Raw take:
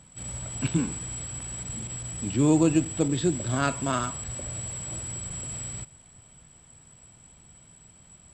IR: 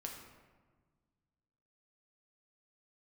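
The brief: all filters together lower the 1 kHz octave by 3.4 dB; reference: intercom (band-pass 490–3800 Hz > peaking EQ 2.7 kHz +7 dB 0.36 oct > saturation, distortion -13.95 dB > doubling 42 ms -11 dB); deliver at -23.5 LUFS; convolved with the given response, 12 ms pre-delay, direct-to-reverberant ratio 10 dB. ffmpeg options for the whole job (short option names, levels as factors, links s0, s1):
-filter_complex "[0:a]equalizer=f=1000:t=o:g=-4.5,asplit=2[s0][s1];[1:a]atrim=start_sample=2205,adelay=12[s2];[s1][s2]afir=irnorm=-1:irlink=0,volume=0.398[s3];[s0][s3]amix=inputs=2:normalize=0,highpass=490,lowpass=3800,equalizer=f=2700:t=o:w=0.36:g=7,asoftclip=threshold=0.0668,asplit=2[s4][s5];[s5]adelay=42,volume=0.282[s6];[s4][s6]amix=inputs=2:normalize=0,volume=4.73"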